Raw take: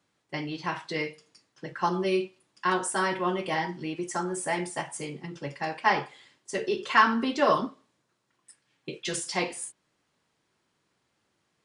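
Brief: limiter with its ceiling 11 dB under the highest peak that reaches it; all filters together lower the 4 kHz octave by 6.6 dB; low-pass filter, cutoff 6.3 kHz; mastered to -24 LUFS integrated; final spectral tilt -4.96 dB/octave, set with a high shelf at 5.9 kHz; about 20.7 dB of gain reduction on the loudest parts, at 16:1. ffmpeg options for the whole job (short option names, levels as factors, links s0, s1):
-af "lowpass=6300,equalizer=f=4000:t=o:g=-6,highshelf=f=5900:g=-9,acompressor=threshold=0.0158:ratio=16,volume=11.2,alimiter=limit=0.211:level=0:latency=1"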